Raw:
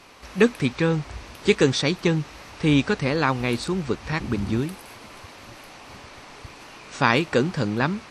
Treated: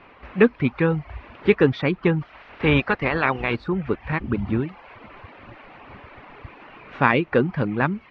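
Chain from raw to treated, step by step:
0:02.21–0:03.55: ceiling on every frequency bin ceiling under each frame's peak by 13 dB
low-pass filter 2,600 Hz 24 dB per octave
reverb reduction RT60 0.59 s
level +2 dB

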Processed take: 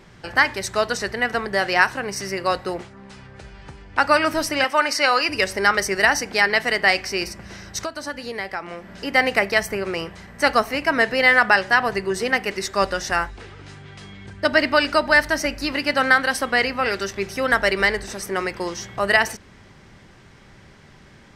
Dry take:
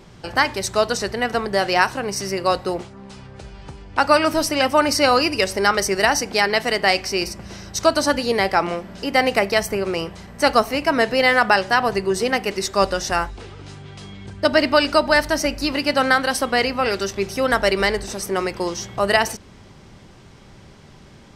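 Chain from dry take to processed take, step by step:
0:04.64–0:05.29: meter weighting curve A
0:07.81–0:09.04: downward compressor 4 to 1, threshold −26 dBFS, peak gain reduction 14 dB
parametric band 1,800 Hz +7.5 dB 0.84 octaves
level −3.5 dB

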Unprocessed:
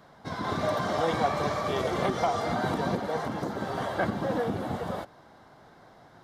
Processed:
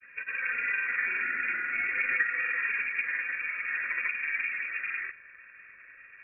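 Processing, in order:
in parallel at +0.5 dB: downward compressor, threshold −36 dBFS, peak gain reduction 14.5 dB
on the sum: surface crackle 480 per second −42 dBFS
phaser with its sweep stopped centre 340 Hz, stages 8
voice inversion scrambler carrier 2,600 Hz
granular cloud, pitch spread up and down by 0 semitones

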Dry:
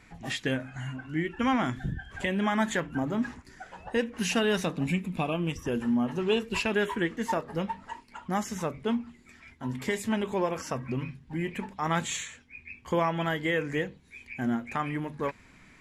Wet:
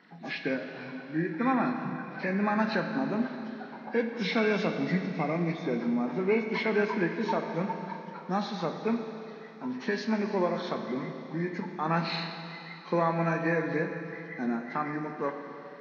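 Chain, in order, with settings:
hearing-aid frequency compression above 1,400 Hz 1.5 to 1
elliptic high-pass filter 160 Hz
four-comb reverb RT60 3.3 s, combs from 28 ms, DRR 5.5 dB

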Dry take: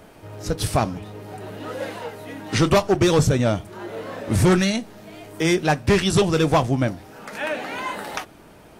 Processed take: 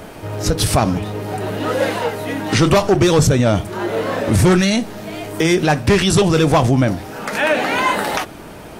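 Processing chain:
boost into a limiter +17.5 dB
level −5.5 dB

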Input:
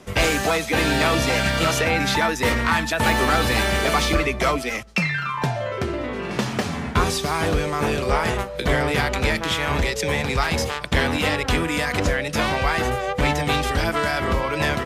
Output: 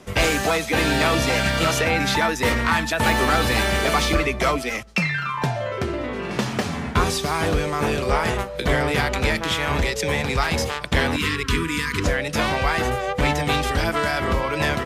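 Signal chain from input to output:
0:11.16–0:12.04: elliptic band-stop filter 430–990 Hz, stop band 40 dB

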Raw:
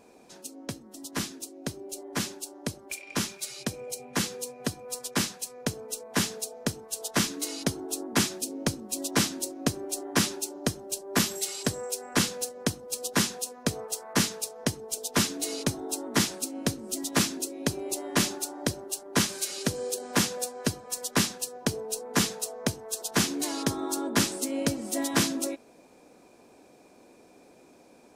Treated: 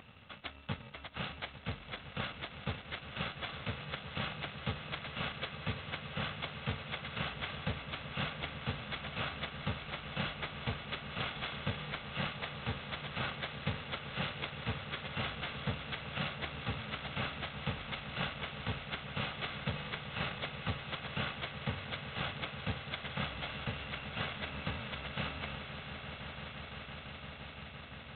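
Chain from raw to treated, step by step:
samples in bit-reversed order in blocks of 128 samples
high-pass filter 47 Hz 12 dB per octave
reversed playback
downward compressor 4 to 1, threshold −42 dBFS, peak gain reduction 19.5 dB
reversed playback
echo that builds up and dies away 171 ms, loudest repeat 8, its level −15 dB
level +9.5 dB
G.726 16 kbit/s 8,000 Hz

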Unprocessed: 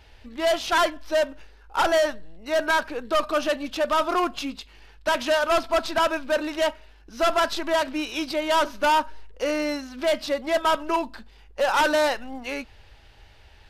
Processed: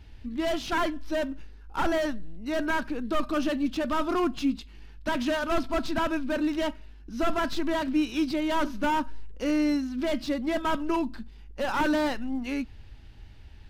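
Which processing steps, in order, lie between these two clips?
low shelf with overshoot 370 Hz +10.5 dB, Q 1.5
slew-rate limiting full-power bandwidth 190 Hz
level −5.5 dB

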